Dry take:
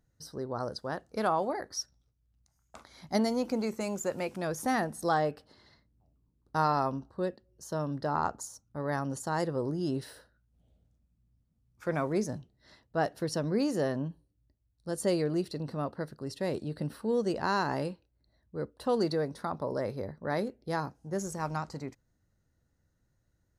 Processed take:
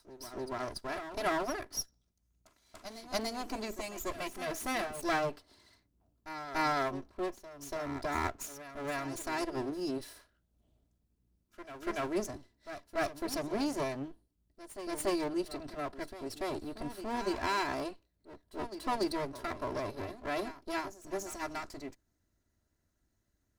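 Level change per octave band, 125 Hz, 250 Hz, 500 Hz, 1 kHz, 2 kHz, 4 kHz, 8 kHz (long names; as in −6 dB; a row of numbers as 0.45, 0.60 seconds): −11.5, −5.0, −5.0, −3.5, +0.5, +0.5, −0.5 decibels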